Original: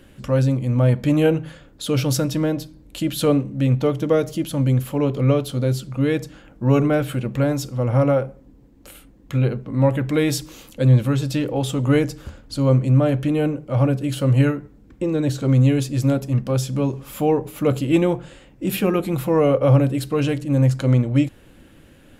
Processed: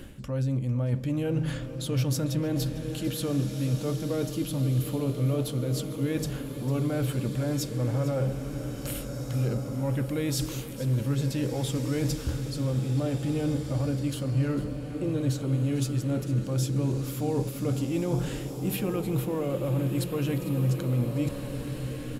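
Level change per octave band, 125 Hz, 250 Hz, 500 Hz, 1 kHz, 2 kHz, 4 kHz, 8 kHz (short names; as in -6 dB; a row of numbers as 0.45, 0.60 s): -7.5, -8.5, -11.0, -11.5, -10.0, -6.0, -3.5 dB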